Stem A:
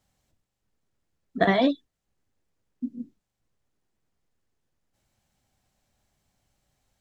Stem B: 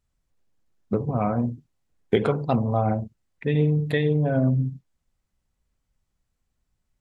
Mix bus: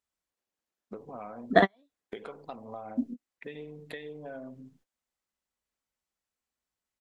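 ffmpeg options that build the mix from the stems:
-filter_complex "[0:a]adelay=150,volume=2.5dB[a];[1:a]highpass=f=540:p=1,acompressor=threshold=-32dB:ratio=8,volume=-5.5dB,asplit=2[b][c];[c]apad=whole_len=315643[d];[a][d]sidechaingate=range=-46dB:threshold=-59dB:ratio=16:detection=peak[e];[e][b]amix=inputs=2:normalize=0,equalizer=f=130:t=o:w=0.53:g=-11.5"

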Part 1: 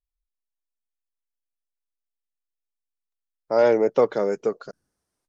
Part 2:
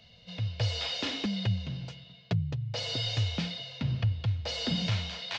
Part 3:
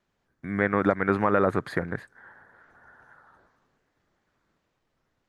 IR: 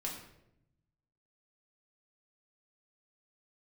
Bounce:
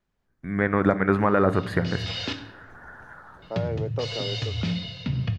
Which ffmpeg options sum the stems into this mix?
-filter_complex "[0:a]volume=-7.5dB[a];[1:a]equalizer=f=730:w=1.5:g=-5.5,adelay=1250,volume=3dB,asplit=3[b][c][d];[b]atrim=end=2.33,asetpts=PTS-STARTPTS,afade=t=out:st=2.326:d=0.004:c=hsin[e];[c]atrim=start=2.33:end=3.42,asetpts=PTS-STARTPTS,volume=0[f];[d]atrim=start=3.42,asetpts=PTS-STARTPTS,afade=t=in:d=0.004:c=hsin[g];[e][f][g]concat=n=3:v=0:a=1,asplit=2[h][i];[i]volume=-6dB[j];[2:a]lowshelf=f=110:g=11,dynaudnorm=f=140:g=7:m=14.5dB,volume=-7dB,asplit=3[k][l][m];[l]volume=-10dB[n];[m]apad=whole_len=292507[o];[h][o]sidechaincompress=threshold=-36dB:ratio=8:attack=33:release=258[p];[a][p]amix=inputs=2:normalize=0,highshelf=f=4.1k:g=-10.5,acompressor=threshold=-28dB:ratio=2.5,volume=0dB[q];[3:a]atrim=start_sample=2205[r];[j][n]amix=inputs=2:normalize=0[s];[s][r]afir=irnorm=-1:irlink=0[t];[k][q][t]amix=inputs=3:normalize=0"

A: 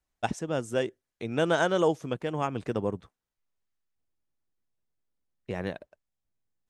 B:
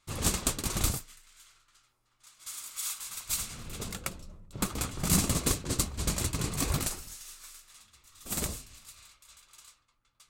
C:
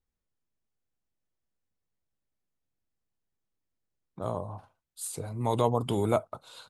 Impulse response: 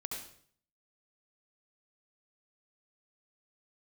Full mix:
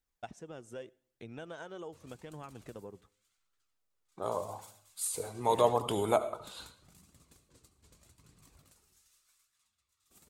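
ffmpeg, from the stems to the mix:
-filter_complex "[0:a]acompressor=threshold=-33dB:ratio=5,volume=-5.5dB,asplit=2[a][b];[b]volume=-22.5dB[c];[1:a]highpass=50,acompressor=threshold=-37dB:ratio=8,adelay=1850,volume=-11dB,asplit=2[d][e];[e]volume=-16.5dB[f];[2:a]bass=f=250:g=-12,treble=f=4k:g=2,volume=2.5dB,asplit=3[g][h][i];[h]volume=-7.5dB[j];[i]apad=whole_len=535634[k];[d][k]sidechaingate=range=-9dB:threshold=-55dB:ratio=16:detection=peak[l];[3:a]atrim=start_sample=2205[m];[c][f][j]amix=inputs=3:normalize=0[n];[n][m]afir=irnorm=-1:irlink=0[o];[a][l][g][o]amix=inputs=4:normalize=0,flanger=delay=0.5:depth=2.2:regen=63:speed=0.84:shape=triangular"

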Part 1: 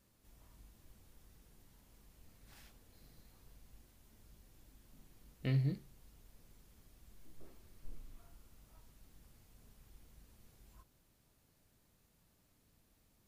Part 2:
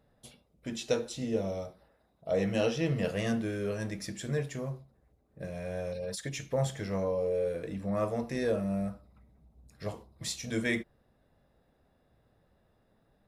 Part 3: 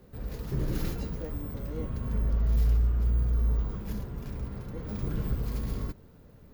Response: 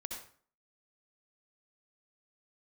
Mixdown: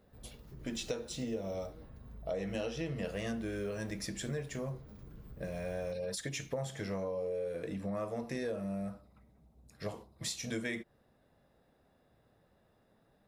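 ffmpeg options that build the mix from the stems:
-filter_complex "[1:a]lowshelf=f=80:g=-8.5,volume=1dB[a];[2:a]acompressor=threshold=-40dB:ratio=2,volume=-13dB[b];[a][b]amix=inputs=2:normalize=0,acompressor=threshold=-34dB:ratio=6"

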